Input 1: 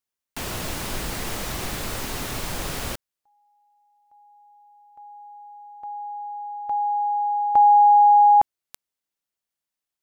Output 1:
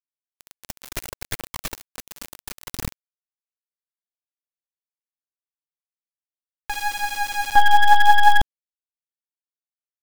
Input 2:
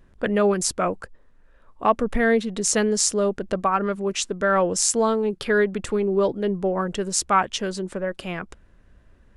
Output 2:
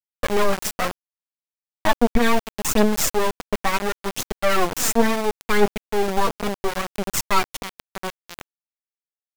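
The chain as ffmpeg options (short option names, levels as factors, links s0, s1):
-af "aeval=exprs='0.75*(cos(1*acos(clip(val(0)/0.75,-1,1)))-cos(1*PI/2))+0.15*(cos(8*acos(clip(val(0)/0.75,-1,1)))-cos(8*PI/2))':c=same,aphaser=in_gain=1:out_gain=1:delay=4.8:decay=0.63:speed=0.71:type=triangular,aeval=exprs='val(0)*gte(abs(val(0)),0.188)':c=same,volume=0.531"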